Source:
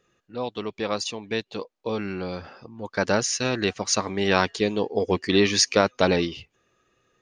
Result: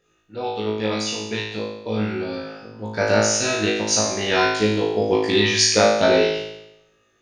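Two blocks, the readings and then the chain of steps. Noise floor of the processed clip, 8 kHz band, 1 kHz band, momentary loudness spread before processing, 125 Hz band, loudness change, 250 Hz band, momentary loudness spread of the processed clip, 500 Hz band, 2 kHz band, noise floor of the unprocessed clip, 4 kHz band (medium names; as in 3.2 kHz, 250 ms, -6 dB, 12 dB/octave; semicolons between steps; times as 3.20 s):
-64 dBFS, +5.5 dB, +3.5 dB, 14 LU, +3.5 dB, +4.5 dB, +2.5 dB, 15 LU, +5.0 dB, +4.5 dB, -77 dBFS, +5.0 dB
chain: band-stop 1.1 kHz, Q 7; on a send: flutter echo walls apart 3.2 m, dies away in 0.86 s; on the sum: trim -1 dB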